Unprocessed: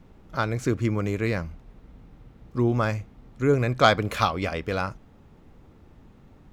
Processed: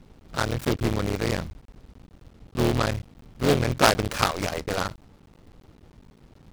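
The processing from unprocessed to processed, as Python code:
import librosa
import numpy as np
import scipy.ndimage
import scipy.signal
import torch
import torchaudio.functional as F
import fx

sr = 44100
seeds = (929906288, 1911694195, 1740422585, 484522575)

y = fx.cycle_switch(x, sr, every=3, mode='muted')
y = fx.noise_mod_delay(y, sr, seeds[0], noise_hz=2700.0, depth_ms=0.064)
y = F.gain(torch.from_numpy(y), 1.5).numpy()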